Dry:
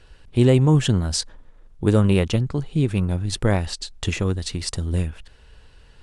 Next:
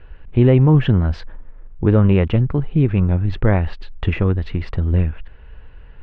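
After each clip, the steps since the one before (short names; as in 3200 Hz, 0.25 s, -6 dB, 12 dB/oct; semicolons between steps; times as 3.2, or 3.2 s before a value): LPF 2500 Hz 24 dB/oct; low shelf 65 Hz +7.5 dB; in parallel at -1.5 dB: limiter -11.5 dBFS, peak gain reduction 7.5 dB; on the sum: gain -1 dB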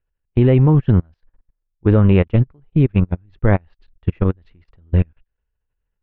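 level quantiser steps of 15 dB; upward expander 2.5:1, over -37 dBFS; gain +5 dB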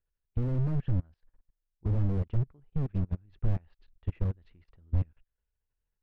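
slew limiter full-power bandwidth 18 Hz; gain -8.5 dB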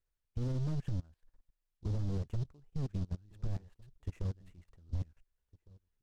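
limiter -25 dBFS, peak gain reduction 9.5 dB; outdoor echo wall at 250 m, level -23 dB; noise-modulated delay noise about 4200 Hz, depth 0.034 ms; gain -1.5 dB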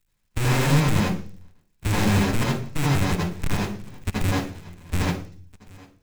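half-waves squared off; reverb RT60 0.40 s, pre-delay 72 ms, DRR -3.5 dB; in parallel at -5 dB: soft clip -25 dBFS, distortion -16 dB; on the sum: gain +7.5 dB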